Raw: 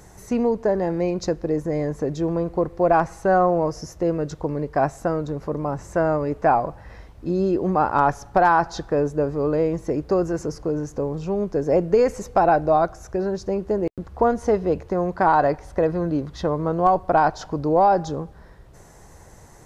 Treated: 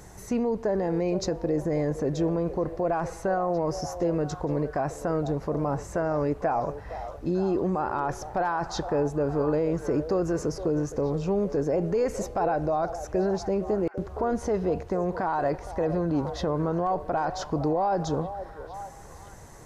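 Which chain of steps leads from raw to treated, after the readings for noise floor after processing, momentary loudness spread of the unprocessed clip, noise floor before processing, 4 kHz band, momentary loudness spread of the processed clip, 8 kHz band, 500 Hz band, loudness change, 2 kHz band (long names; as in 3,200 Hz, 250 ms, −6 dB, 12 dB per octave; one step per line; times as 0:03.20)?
−44 dBFS, 9 LU, −47 dBFS, −1.0 dB, 4 LU, 0.0 dB, −5.0 dB, −5.5 dB, −8.5 dB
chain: brickwall limiter −18.5 dBFS, peak gain reduction 11.5 dB
on a send: echo through a band-pass that steps 464 ms, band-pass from 580 Hz, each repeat 0.7 octaves, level −9 dB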